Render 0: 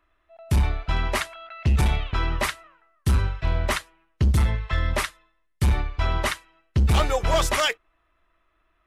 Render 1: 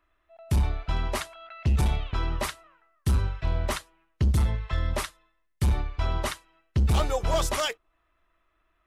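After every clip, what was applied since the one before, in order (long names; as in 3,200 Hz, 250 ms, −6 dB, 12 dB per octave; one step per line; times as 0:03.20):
dynamic equaliser 2,000 Hz, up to −6 dB, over −41 dBFS, Q 1.1
level −3 dB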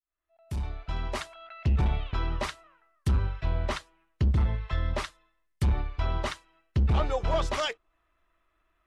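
fade in at the beginning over 1.39 s
treble cut that deepens with the level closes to 2,700 Hz, closed at −19 dBFS
level −1.5 dB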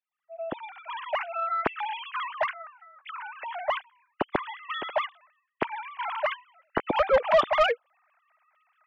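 three sine waves on the formant tracks
soft clipping −16 dBFS, distortion −10 dB
level +1.5 dB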